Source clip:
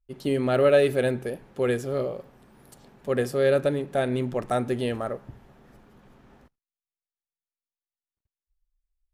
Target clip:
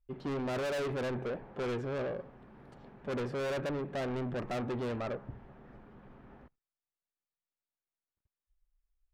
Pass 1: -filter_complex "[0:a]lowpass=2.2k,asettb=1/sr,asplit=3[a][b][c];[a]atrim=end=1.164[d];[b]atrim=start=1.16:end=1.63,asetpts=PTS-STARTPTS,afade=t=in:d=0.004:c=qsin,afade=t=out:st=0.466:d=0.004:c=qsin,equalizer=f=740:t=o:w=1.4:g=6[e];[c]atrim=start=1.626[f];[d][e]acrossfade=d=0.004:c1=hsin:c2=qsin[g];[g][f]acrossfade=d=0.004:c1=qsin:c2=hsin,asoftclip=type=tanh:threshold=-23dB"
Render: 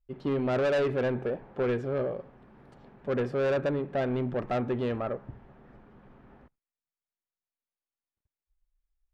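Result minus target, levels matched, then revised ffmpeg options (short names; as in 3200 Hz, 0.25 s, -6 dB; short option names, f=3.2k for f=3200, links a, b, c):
soft clip: distortion -5 dB
-filter_complex "[0:a]lowpass=2.2k,asettb=1/sr,asplit=3[a][b][c];[a]atrim=end=1.164[d];[b]atrim=start=1.16:end=1.63,asetpts=PTS-STARTPTS,afade=t=in:d=0.004:c=qsin,afade=t=out:st=0.466:d=0.004:c=qsin,equalizer=f=740:t=o:w=1.4:g=6[e];[c]atrim=start=1.626[f];[d][e]acrossfade=d=0.004:c1=hsin:c2=qsin[g];[g][f]acrossfade=d=0.004:c1=qsin:c2=hsin,asoftclip=type=tanh:threshold=-32.5dB"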